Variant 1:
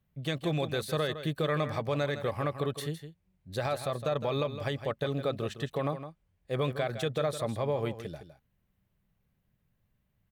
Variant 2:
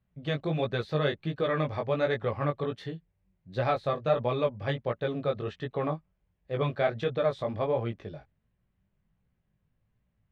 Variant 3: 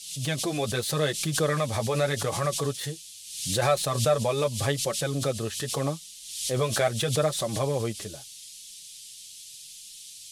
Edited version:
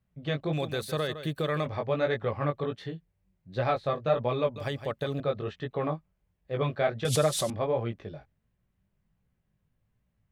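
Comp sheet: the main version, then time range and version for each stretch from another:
2
0.53–1.66 s: from 1
4.56–5.20 s: from 1
7.05–7.50 s: from 3

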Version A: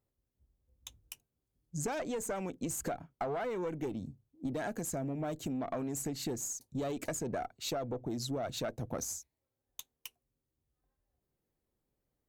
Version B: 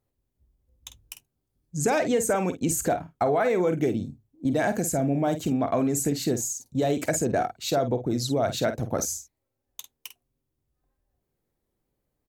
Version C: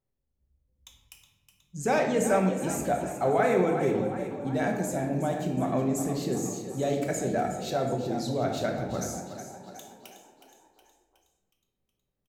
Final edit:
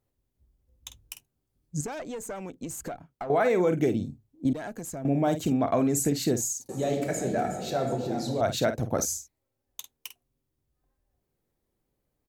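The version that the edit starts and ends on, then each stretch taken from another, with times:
B
1.81–3.30 s: from A
4.53–5.05 s: from A
6.69–8.41 s: from C

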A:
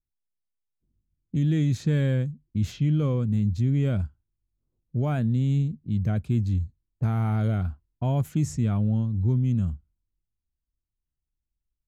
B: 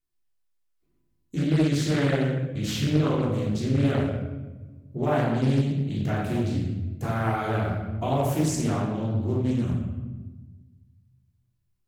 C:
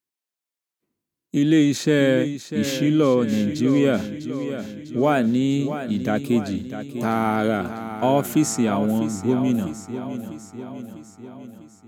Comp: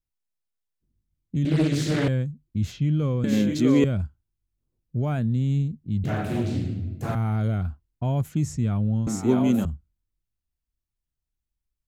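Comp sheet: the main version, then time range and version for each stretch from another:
A
1.45–2.08 s: from B
3.24–3.84 s: from C
6.04–7.15 s: from B
9.07–9.65 s: from C

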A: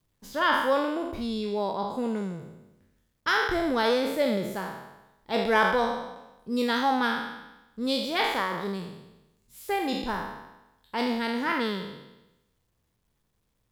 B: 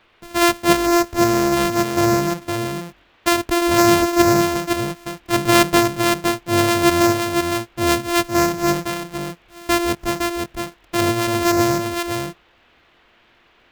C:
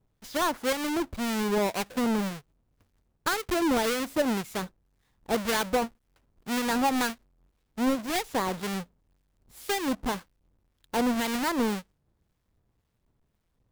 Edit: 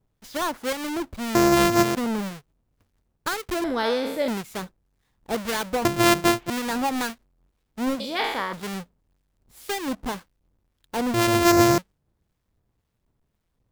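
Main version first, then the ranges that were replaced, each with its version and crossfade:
C
1.35–1.95 s: from B
3.64–4.28 s: from A
5.85–6.50 s: from B
8.00–8.53 s: from A
11.14–11.78 s: from B

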